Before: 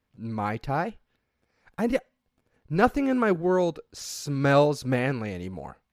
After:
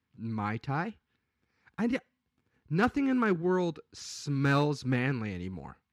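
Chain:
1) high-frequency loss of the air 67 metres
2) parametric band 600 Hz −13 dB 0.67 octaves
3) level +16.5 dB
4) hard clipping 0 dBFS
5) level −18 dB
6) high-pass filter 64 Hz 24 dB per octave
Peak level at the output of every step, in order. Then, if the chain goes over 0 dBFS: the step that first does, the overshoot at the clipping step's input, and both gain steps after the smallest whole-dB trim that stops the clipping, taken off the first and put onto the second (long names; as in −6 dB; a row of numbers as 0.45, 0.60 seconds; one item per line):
−7.5, −11.0, +5.5, 0.0, −18.0, −15.0 dBFS
step 3, 5.5 dB
step 3 +10.5 dB, step 5 −12 dB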